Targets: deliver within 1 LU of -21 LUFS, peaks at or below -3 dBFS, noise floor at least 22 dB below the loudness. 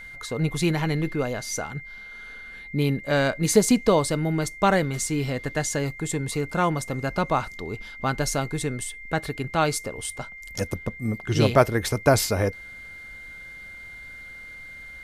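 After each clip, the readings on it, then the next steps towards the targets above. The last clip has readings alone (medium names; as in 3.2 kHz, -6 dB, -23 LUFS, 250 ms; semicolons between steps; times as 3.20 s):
steady tone 2.1 kHz; tone level -39 dBFS; loudness -25.0 LUFS; peak level -4.5 dBFS; loudness target -21.0 LUFS
-> band-stop 2.1 kHz, Q 30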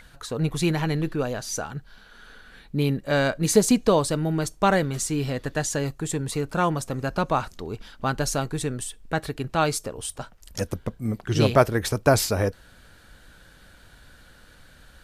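steady tone not found; loudness -25.0 LUFS; peak level -4.5 dBFS; loudness target -21.0 LUFS
-> trim +4 dB; peak limiter -3 dBFS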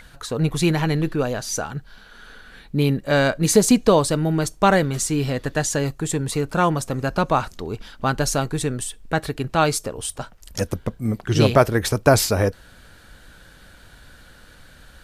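loudness -21.0 LUFS; peak level -3.0 dBFS; noise floor -48 dBFS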